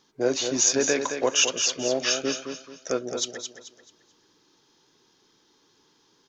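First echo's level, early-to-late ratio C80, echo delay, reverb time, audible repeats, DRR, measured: -7.5 dB, none, 0.218 s, none, 3, none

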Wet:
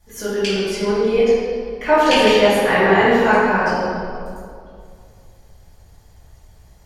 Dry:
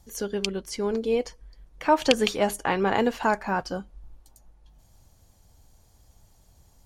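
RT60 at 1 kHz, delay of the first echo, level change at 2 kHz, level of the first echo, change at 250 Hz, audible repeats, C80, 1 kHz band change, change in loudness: 2.1 s, none, +12.5 dB, none, +8.0 dB, none, -1.0 dB, +9.0 dB, +9.5 dB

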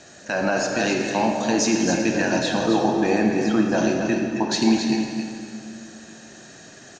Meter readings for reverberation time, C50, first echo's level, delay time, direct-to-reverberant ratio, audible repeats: 2.3 s, 1.5 dB, -7.0 dB, 0.271 s, 0.5 dB, 1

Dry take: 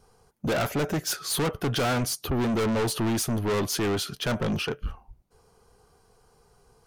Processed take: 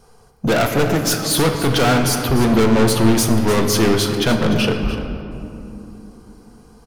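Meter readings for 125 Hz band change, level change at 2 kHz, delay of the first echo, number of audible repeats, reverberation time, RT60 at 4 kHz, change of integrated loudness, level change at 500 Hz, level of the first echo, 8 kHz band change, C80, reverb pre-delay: +10.5 dB, +10.0 dB, 0.296 s, 1, 3.0 s, 1.3 s, +10.5 dB, +10.5 dB, -12.5 dB, +9.5 dB, 5.5 dB, 4 ms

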